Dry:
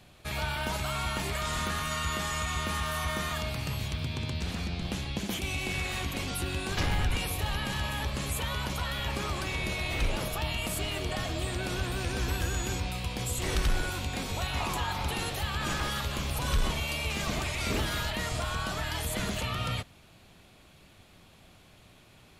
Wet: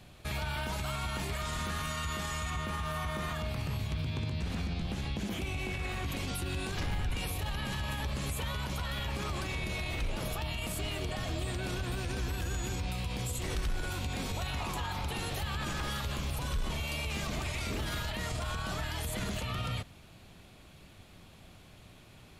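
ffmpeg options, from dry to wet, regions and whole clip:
-filter_complex "[0:a]asettb=1/sr,asplit=3[s0][s1][s2];[s0]atrim=end=2.504[s3];[s1]atrim=start=2.5:end=6.06,asetpts=PTS-STARTPTS,afade=t=in:d=0.004:c=qsin,afade=t=out:st=3.556:d=0.004:c=qsin,acrossover=split=2600[s4][s5];[s5]acompressor=threshold=0.00708:ratio=4:attack=1:release=60[s6];[s4][s6]amix=inputs=2:normalize=0,asplit=2[s7][s8];[s8]adelay=19,volume=0.282[s9];[s7][s9]amix=inputs=2:normalize=0,atrim=end_sample=156996[s10];[s2]atrim=start=6.056[s11];[s3][s10]acrossfade=d=0.004:c1=hsin:c2=qsin[s12];[s12][s11]acrossfade=d=0.004:c1=qsin:c2=hsin,lowshelf=f=250:g=4,alimiter=level_in=1.33:limit=0.0631:level=0:latency=1:release=65,volume=0.75"

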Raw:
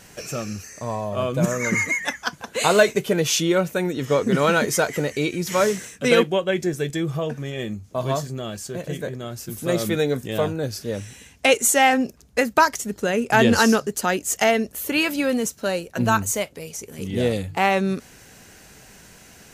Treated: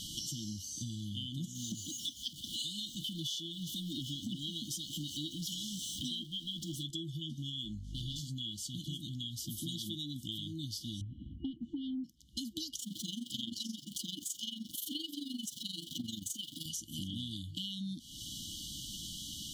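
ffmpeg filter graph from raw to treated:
-filter_complex "[0:a]asettb=1/sr,asplit=3[s0][s1][s2];[s0]atrim=end=1.554[s3];[s1]atrim=start=1.55:end=6.83,asetpts=PTS-STARTPTS,afade=t=in:d=0.004:c=qsin,afade=t=out:st=5.276:d=0.004:c=qsin,aeval=exprs='val(0)+0.5*0.0335*sgn(val(0))':c=same,aecho=1:1:356:0.0944,atrim=end_sample=232848[s4];[s2]atrim=start=6.826[s5];[s3][s4]acrossfade=d=0.004:c1=hsin:c2=qsin[s6];[s6][s5]acrossfade=d=0.004:c1=qsin:c2=hsin,asettb=1/sr,asplit=3[s7][s8][s9];[s7]atrim=end=7.654[s10];[s8]atrim=start=7.65:end=8.2,asetpts=PTS-STARTPTS,afade=t=in:d=0.004:c=qsin,afade=t=out:st=0.546:d=0.004:c=qsin,lowpass=12000,volume=15,asoftclip=hard,volume=0.0668,aeval=exprs='val(0)+0.0126*(sin(2*PI*50*n/s)+sin(2*PI*2*50*n/s)/2+sin(2*PI*3*50*n/s)/3+sin(2*PI*4*50*n/s)/4+sin(2*PI*5*50*n/s)/5)':c=same[s11];[s9]atrim=start=8.196[s12];[s10][s11]acrossfade=d=0.004:c1=hsin:c2=qsin[s13];[s13][s12]acrossfade=d=0.004:c1=qsin:c2=hsin,asettb=1/sr,asplit=3[s14][s15][s16];[s14]atrim=end=11.014[s17];[s15]atrim=start=11.01:end=12.04,asetpts=PTS-STARTPTS,afade=t=in:d=0.004:c=qsin,afade=t=out:st=1.026:d=0.004:c=qsin,lowpass=f=1200:w=0.5412,lowpass=f=1200:w=1.3066,acontrast=77[s18];[s16]atrim=start=12.036[s19];[s17][s18]acrossfade=d=0.004:c1=hsin:c2=qsin[s20];[s20][s19]acrossfade=d=0.004:c1=qsin:c2=hsin,asettb=1/sr,asplit=3[s21][s22][s23];[s21]atrim=end=12.794[s24];[s22]atrim=start=12.79:end=16.66,asetpts=PTS-STARTPTS,afade=t=in:d=0.004:c=qsin,afade=t=out:st=3.866:d=0.004:c=qsin,aeval=exprs='val(0)+0.5*0.0299*sgn(val(0))':c=same,highpass=170,tremolo=f=23:d=0.788[s25];[s23]atrim=start=16.656[s26];[s24][s25]acrossfade=d=0.004:c1=hsin:c2=qsin[s27];[s27][s26]acrossfade=d=0.004:c1=qsin:c2=hsin,afftfilt=real='re*(1-between(b*sr/4096,340,2900))':imag='im*(1-between(b*sr/4096,340,2900))':win_size=4096:overlap=0.75,equalizer=f=3200:t=o:w=0.97:g=14.5,acompressor=threshold=0.0112:ratio=12,volume=1.19"

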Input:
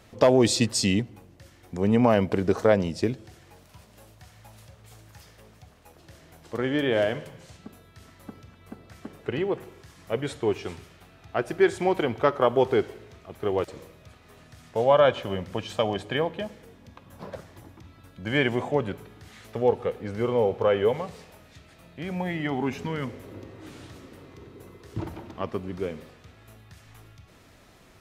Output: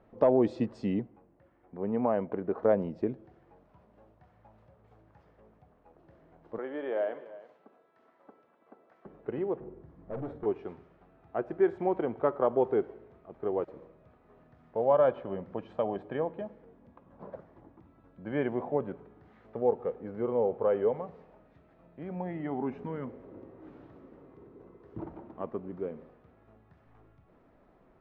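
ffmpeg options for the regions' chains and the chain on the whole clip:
-filter_complex "[0:a]asettb=1/sr,asplit=3[s0][s1][s2];[s0]atrim=end=1.074[s3];[s1]atrim=start=1.07:end=2.63,asetpts=PTS-STARTPTS,afade=t=in:d=0.004:c=qsin,afade=t=out:st=1.556:d=0.004:c=qsin,lowpass=2900,lowshelf=f=460:g=-5.5[s4];[s2]atrim=start=2.626[s5];[s3][s4]acrossfade=d=0.004:c1=hsin:c2=qsin[s6];[s6][s5]acrossfade=d=0.004:c1=qsin:c2=hsin,asettb=1/sr,asplit=3[s7][s8][s9];[s7]atrim=end=6.584[s10];[s8]atrim=start=6.58:end=9.06,asetpts=PTS-STARTPTS,afade=t=in:d=0.004:c=qsin,afade=t=out:st=2.476:d=0.004:c=qsin,highpass=470,aecho=1:1:333:0.133,atrim=end_sample=109368[s11];[s9]atrim=start=9.056[s12];[s10][s11]acrossfade=d=0.004:c1=hsin:c2=qsin[s13];[s13][s12]acrossfade=d=0.004:c1=qsin:c2=hsin,asettb=1/sr,asplit=3[s14][s15][s16];[s14]atrim=end=9.604[s17];[s15]atrim=start=9.6:end=10.46,asetpts=PTS-STARTPTS,afade=t=in:d=0.004:c=qsin,afade=t=out:st=0.856:d=0.004:c=qsin,tiltshelf=f=740:g=8.5,volume=25.1,asoftclip=hard,volume=0.0398,asplit=2[s18][s19];[s19]adelay=46,volume=0.316[s20];[s18][s20]amix=inputs=2:normalize=0,atrim=end_sample=37926[s21];[s16]atrim=start=10.456[s22];[s17][s21]acrossfade=d=0.004:c1=hsin:c2=qsin[s23];[s23][s22]acrossfade=d=0.004:c1=qsin:c2=hsin,lowpass=1000,equalizer=f=89:w=1.2:g=-11.5,volume=0.631"

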